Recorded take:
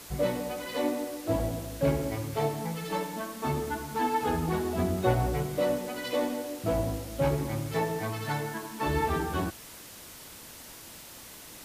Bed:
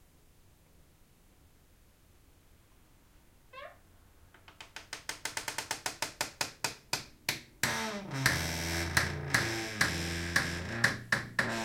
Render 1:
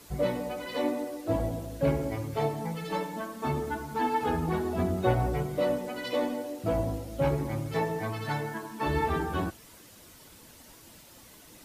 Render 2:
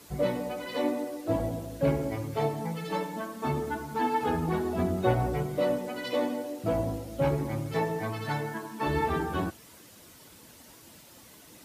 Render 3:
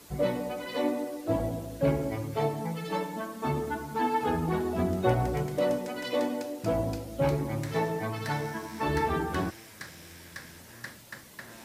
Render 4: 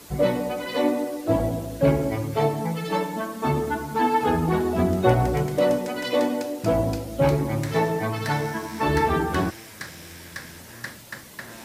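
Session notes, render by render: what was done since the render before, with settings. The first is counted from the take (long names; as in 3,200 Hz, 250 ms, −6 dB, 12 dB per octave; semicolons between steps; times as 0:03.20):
broadband denoise 8 dB, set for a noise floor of −47 dBFS
high-pass filter 150 Hz 6 dB per octave; low-shelf EQ 220 Hz +5 dB
mix in bed −14.5 dB
level +6.5 dB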